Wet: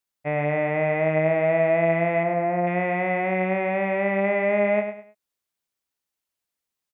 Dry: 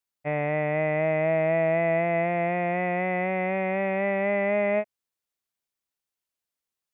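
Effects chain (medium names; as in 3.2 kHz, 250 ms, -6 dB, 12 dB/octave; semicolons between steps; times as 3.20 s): 2.23–2.67 s: low-pass 1.5 kHz 12 dB/octave; on a send: feedback delay 102 ms, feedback 29%, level -8 dB; on the sum: trim +2 dB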